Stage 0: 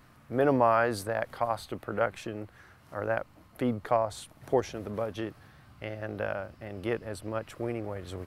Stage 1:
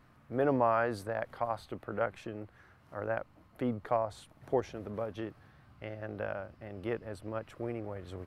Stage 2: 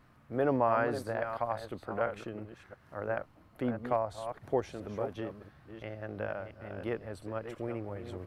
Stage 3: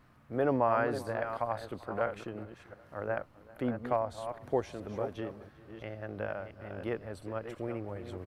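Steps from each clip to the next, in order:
high shelf 3900 Hz -9 dB; gain -4 dB
reverse delay 0.343 s, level -9 dB
feedback echo 0.392 s, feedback 43%, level -21.5 dB

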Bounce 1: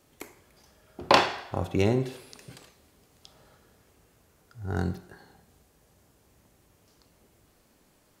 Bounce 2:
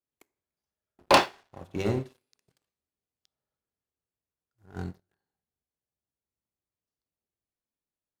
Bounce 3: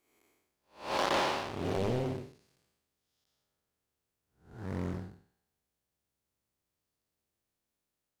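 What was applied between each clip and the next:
de-hum 48.29 Hz, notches 14; sample leveller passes 3; upward expander 2.5:1, over -23 dBFS; gain -6 dB
time blur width 0.305 s; compressor 4:1, threshold -36 dBFS, peak gain reduction 9 dB; Doppler distortion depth 0.88 ms; gain +8.5 dB

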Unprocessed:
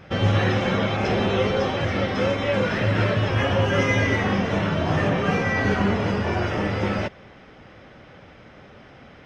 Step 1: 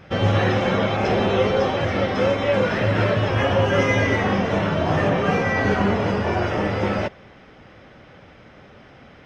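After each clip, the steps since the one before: dynamic EQ 650 Hz, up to +4 dB, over -32 dBFS, Q 0.71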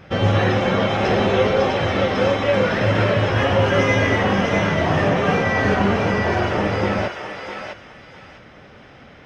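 thinning echo 0.654 s, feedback 28%, high-pass 1100 Hz, level -3.5 dB; gain +1.5 dB

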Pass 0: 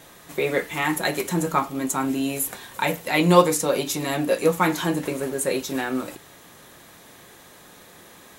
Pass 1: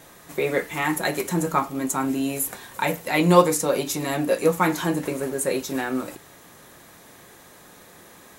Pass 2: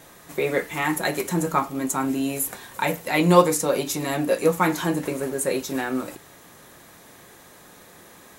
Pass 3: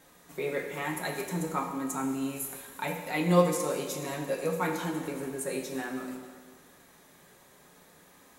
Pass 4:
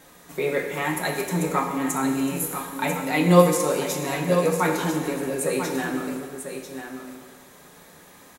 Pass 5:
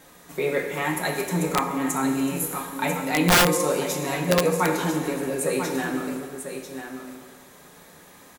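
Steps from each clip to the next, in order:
bell 3300 Hz -3.5 dB 0.83 oct
nothing audible
flange 0.61 Hz, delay 3.8 ms, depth 1.6 ms, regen -53%; plate-style reverb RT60 1.7 s, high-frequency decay 0.9×, DRR 3.5 dB; gain -6.5 dB
echo 0.994 s -8.5 dB; gain +7.5 dB
wrapped overs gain 11 dB

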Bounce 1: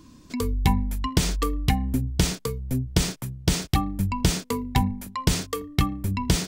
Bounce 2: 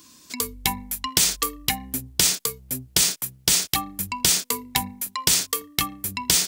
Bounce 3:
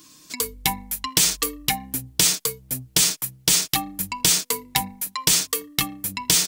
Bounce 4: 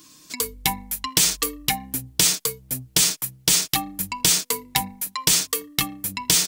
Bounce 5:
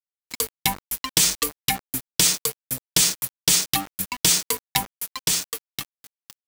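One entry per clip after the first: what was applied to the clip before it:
tilt +4 dB/oct
comb 6.4 ms, depth 52%
nothing audible
ending faded out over 1.78 s; sample gate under -28.5 dBFS

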